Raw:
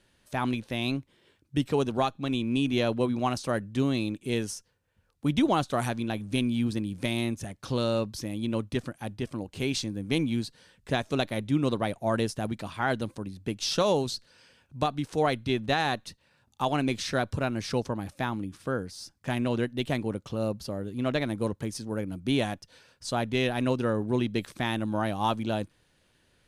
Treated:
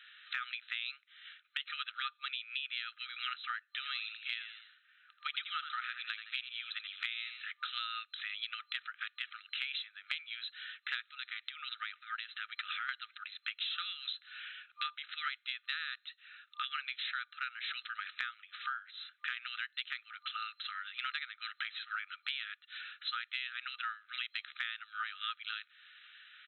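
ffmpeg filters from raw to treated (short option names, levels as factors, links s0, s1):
-filter_complex "[0:a]asplit=3[s0][s1][s2];[s0]afade=t=out:st=3.82:d=0.02[s3];[s1]asplit=4[s4][s5][s6][s7];[s5]adelay=82,afreqshift=86,volume=0.316[s8];[s6]adelay=164,afreqshift=172,volume=0.0977[s9];[s7]adelay=246,afreqshift=258,volume=0.0305[s10];[s4][s8][s9][s10]amix=inputs=4:normalize=0,afade=t=in:st=3.82:d=0.02,afade=t=out:st=7.45:d=0.02[s11];[s2]afade=t=in:st=7.45:d=0.02[s12];[s3][s11][s12]amix=inputs=3:normalize=0,asettb=1/sr,asplit=3[s13][s14][s15];[s13]atrim=end=11.074[s16];[s14]atrim=start=11.07:end=12.89,asetpts=PTS-STARTPTS,afade=t=in:d=0.004:c=qsin,afade=t=out:st=1.816:d=0.004:c=qsin,acompressor=threshold=0.0141:ratio=4:attack=3.2:release=140:knee=1:detection=peak[s17];[s15]atrim=start=12.886[s18];[s16][s17]acrossfade=d=0.004:c1=hsin:c2=qsin[s19];[s19][s18]acrossfade=d=0.004:c1=qsin:c2=hsin,asplit=3[s20][s21][s22];[s20]afade=t=out:st=21.42:d=0.02[s23];[s21]acontrast=59,afade=t=in:st=21.42:d=0.02,afade=t=out:st=22.21:d=0.02[s24];[s22]afade=t=in:st=22.21:d=0.02[s25];[s23][s24][s25]amix=inputs=3:normalize=0,afftfilt=real='re*between(b*sr/4096,1200,4100)':imag='im*between(b*sr/4096,1200,4100)':win_size=4096:overlap=0.75,acompressor=threshold=0.00282:ratio=8,volume=5.31"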